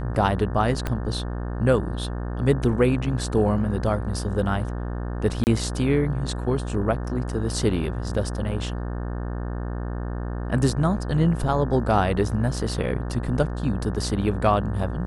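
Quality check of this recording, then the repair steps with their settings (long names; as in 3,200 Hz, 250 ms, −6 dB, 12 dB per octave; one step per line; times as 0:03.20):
mains buzz 60 Hz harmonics 30 −29 dBFS
0:00.87: click −12 dBFS
0:05.44–0:05.47: drop-out 29 ms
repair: click removal
hum removal 60 Hz, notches 30
repair the gap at 0:05.44, 29 ms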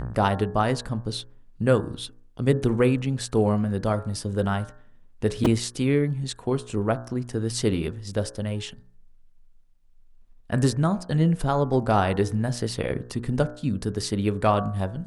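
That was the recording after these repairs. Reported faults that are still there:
0:00.87: click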